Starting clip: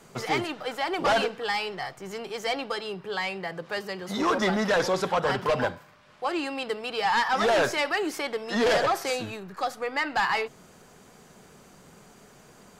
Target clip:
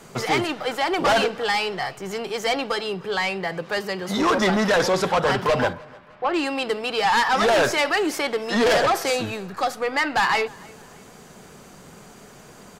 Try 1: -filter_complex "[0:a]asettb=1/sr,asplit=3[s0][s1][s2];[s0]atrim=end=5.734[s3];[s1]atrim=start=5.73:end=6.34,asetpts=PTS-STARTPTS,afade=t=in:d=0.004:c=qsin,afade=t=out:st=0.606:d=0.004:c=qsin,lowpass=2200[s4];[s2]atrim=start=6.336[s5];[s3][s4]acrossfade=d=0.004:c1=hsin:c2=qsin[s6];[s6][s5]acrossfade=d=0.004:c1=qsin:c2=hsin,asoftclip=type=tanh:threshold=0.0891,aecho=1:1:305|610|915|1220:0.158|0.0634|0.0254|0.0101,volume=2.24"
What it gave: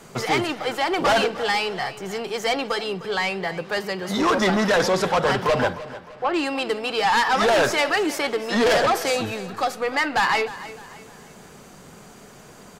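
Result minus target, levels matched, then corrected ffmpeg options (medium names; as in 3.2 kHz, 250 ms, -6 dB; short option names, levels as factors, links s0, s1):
echo-to-direct +9 dB
-filter_complex "[0:a]asettb=1/sr,asplit=3[s0][s1][s2];[s0]atrim=end=5.734[s3];[s1]atrim=start=5.73:end=6.34,asetpts=PTS-STARTPTS,afade=t=in:d=0.004:c=qsin,afade=t=out:st=0.606:d=0.004:c=qsin,lowpass=2200[s4];[s2]atrim=start=6.336[s5];[s3][s4]acrossfade=d=0.004:c1=hsin:c2=qsin[s6];[s6][s5]acrossfade=d=0.004:c1=qsin:c2=hsin,asoftclip=type=tanh:threshold=0.0891,aecho=1:1:305|610:0.0562|0.0225,volume=2.24"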